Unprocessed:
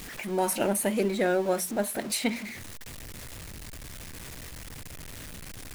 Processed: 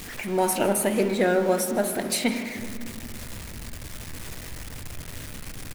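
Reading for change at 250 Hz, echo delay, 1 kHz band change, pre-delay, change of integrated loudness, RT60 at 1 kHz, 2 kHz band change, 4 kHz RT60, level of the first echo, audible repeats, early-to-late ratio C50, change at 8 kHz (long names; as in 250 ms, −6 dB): +4.0 dB, 156 ms, +4.0 dB, 8 ms, +3.0 dB, 1.9 s, +4.0 dB, 1.3 s, −18.0 dB, 1, 8.0 dB, +3.0 dB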